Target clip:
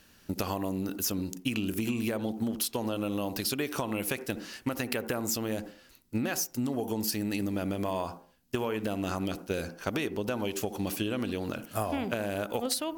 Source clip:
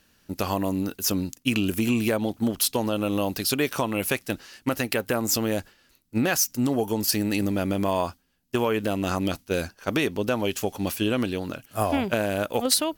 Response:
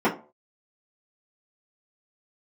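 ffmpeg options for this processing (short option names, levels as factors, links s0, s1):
-filter_complex "[0:a]asplit=2[s0][s1];[1:a]atrim=start_sample=2205,lowpass=3000,adelay=59[s2];[s1][s2]afir=irnorm=-1:irlink=0,volume=0.0251[s3];[s0][s3]amix=inputs=2:normalize=0,acompressor=threshold=0.0251:ratio=5,volume=1.41"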